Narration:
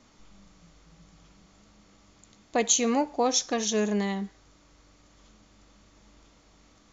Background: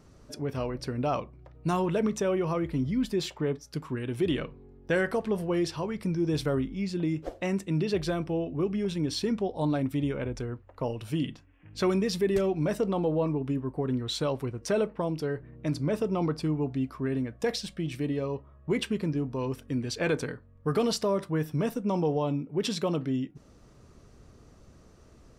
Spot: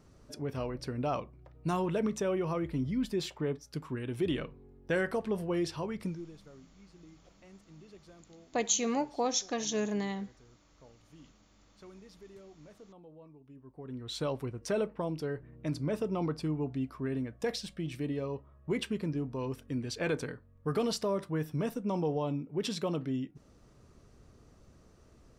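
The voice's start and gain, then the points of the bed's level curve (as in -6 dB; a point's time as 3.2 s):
6.00 s, -6.0 dB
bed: 6.05 s -4 dB
6.37 s -26.5 dB
13.43 s -26.5 dB
14.22 s -4.5 dB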